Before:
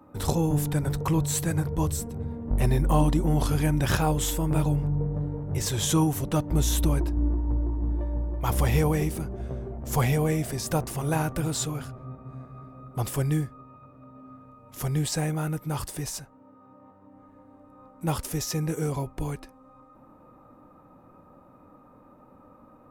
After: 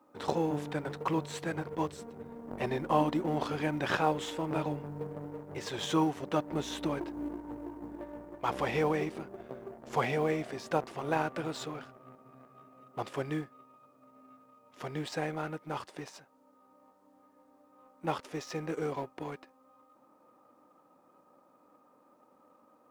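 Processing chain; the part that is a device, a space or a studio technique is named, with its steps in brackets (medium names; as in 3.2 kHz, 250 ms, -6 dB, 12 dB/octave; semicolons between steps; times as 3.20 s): phone line with mismatched companding (band-pass 310–3300 Hz; companding laws mixed up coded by A)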